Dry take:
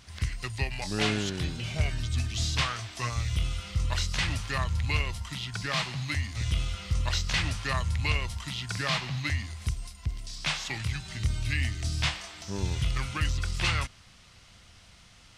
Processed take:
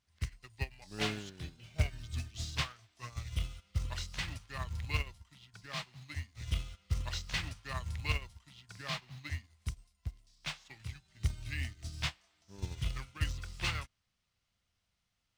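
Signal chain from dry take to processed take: in parallel at -12 dB: companded quantiser 4-bit; on the sum: upward expansion 2.5:1, over -37 dBFS; trim -3.5 dB

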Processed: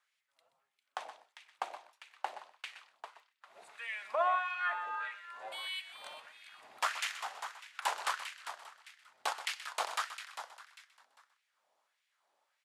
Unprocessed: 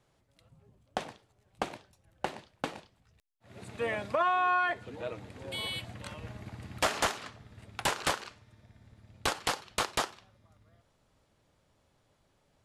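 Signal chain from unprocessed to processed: frequency-shifting echo 399 ms, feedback 31%, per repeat +150 Hz, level -10 dB; LFO high-pass sine 1.6 Hz 690–2300 Hz; delay 127 ms -13 dB; trim -7.5 dB

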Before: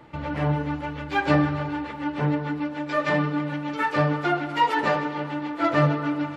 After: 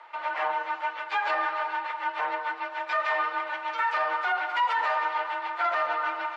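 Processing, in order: high-pass 810 Hz 24 dB/octave; tilt EQ -2.5 dB/octave; peak limiter -24 dBFS, peak gain reduction 12 dB; frequency shift +28 Hz; short-mantissa float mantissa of 6-bit; distance through air 73 m; trim +6.5 dB

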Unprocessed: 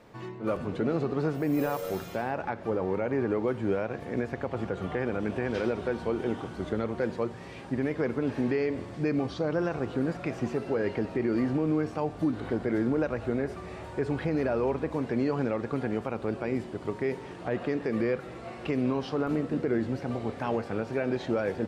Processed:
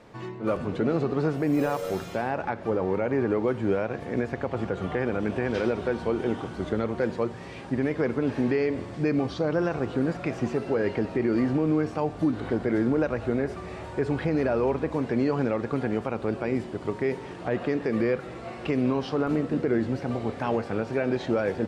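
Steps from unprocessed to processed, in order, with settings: low-pass 11 kHz 12 dB/octave; trim +3 dB

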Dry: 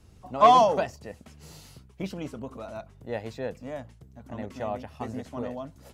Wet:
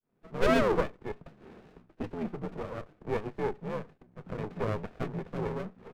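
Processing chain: fade-in on the opening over 0.81 s; comb 3.8 ms, depth 40%; in parallel at +0.5 dB: compression, threshold -37 dBFS, peak gain reduction 19.5 dB; on the sum: mistuned SSB -85 Hz 290–2100 Hz; sliding maximum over 33 samples

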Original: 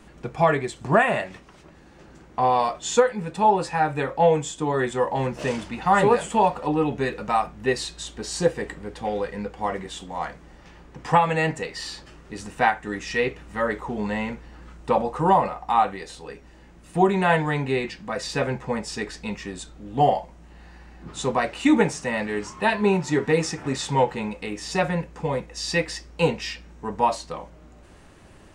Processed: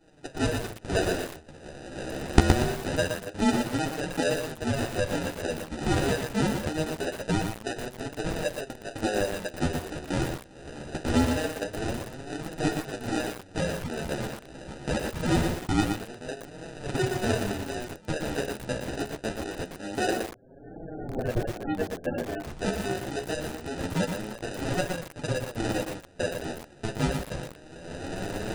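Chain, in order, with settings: recorder AGC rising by 27 dB/s; high-pass 460 Hz 12 dB/octave; peaking EQ 1.1 kHz +4 dB 0.53 oct; sample-rate reducer 1.1 kHz, jitter 0%; 20.13–22.47 s: loudest bins only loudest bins 32; flange 0.24 Hz, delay 6 ms, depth 9.6 ms, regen +18%; resampled via 22.05 kHz; bit-crushed delay 118 ms, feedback 35%, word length 5-bit, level -4 dB; trim -4 dB

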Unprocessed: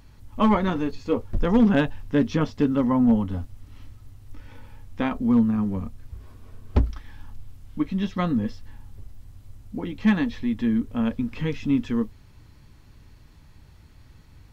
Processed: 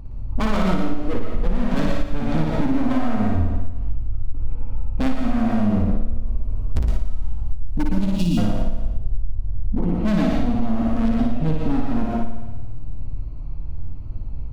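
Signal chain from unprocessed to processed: local Wiener filter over 25 samples; hard clipper -26.5 dBFS, distortion -5 dB; 6.01–8.33 s: treble shelf 4.1 kHz +11.5 dB; reverberation RT60 0.35 s, pre-delay 95 ms, DRR 2 dB; 8.16–8.38 s: time-frequency box 370–2400 Hz -29 dB; bass shelf 120 Hz +11.5 dB; flutter echo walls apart 9.8 m, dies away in 1 s; compression 6:1, threshold -20 dBFS, peak gain reduction 12 dB; trim +6.5 dB

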